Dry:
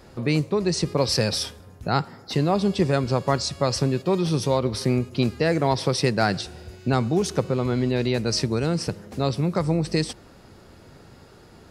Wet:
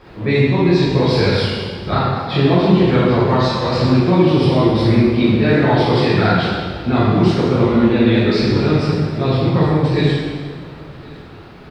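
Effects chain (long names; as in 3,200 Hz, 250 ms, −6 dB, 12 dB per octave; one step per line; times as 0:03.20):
pitch shifter swept by a sawtooth −2.5 semitones, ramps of 214 ms
high-shelf EQ 2,100 Hz +10 dB
in parallel at +1 dB: brickwall limiter −13 dBFS, peak gain reduction 8 dB
on the sum: bit reduction 7 bits
high-frequency loss of the air 400 metres
on a send: single-tap delay 1,061 ms −23 dB
on the sum: dense smooth reverb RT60 1.7 s, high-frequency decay 0.85×, DRR −9 dB
level −4 dB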